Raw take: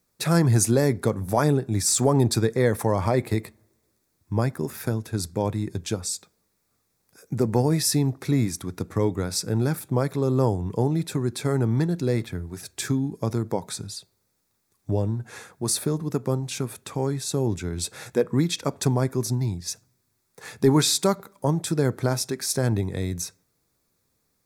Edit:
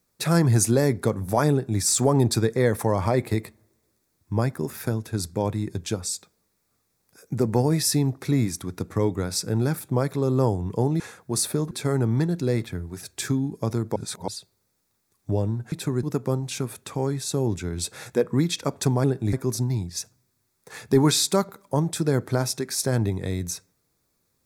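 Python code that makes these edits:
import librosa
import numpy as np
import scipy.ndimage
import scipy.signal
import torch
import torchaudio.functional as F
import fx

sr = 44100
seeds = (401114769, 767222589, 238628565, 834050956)

y = fx.edit(x, sr, fx.duplicate(start_s=1.51, length_s=0.29, to_s=19.04),
    fx.swap(start_s=11.0, length_s=0.31, other_s=15.32, other_length_s=0.71),
    fx.reverse_span(start_s=13.56, length_s=0.32), tone=tone)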